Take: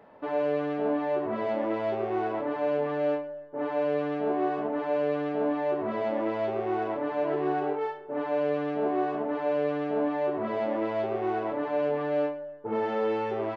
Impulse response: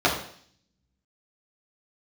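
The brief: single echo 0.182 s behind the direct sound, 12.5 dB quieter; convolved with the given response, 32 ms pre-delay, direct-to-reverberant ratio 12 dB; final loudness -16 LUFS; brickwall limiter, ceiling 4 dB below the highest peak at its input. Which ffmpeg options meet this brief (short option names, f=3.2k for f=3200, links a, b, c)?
-filter_complex "[0:a]alimiter=limit=-21.5dB:level=0:latency=1,aecho=1:1:182:0.237,asplit=2[a][b];[1:a]atrim=start_sample=2205,adelay=32[c];[b][c]afir=irnorm=-1:irlink=0,volume=-30dB[d];[a][d]amix=inputs=2:normalize=0,volume=13.5dB"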